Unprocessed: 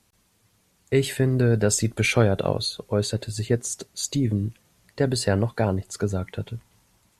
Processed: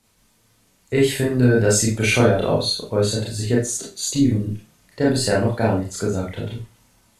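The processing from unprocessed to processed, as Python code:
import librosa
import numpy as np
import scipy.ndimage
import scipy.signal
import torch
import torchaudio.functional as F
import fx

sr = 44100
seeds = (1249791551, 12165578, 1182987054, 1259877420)

y = fx.rev_schroeder(x, sr, rt60_s=0.3, comb_ms=25, drr_db=-4.5)
y = y * librosa.db_to_amplitude(-1.0)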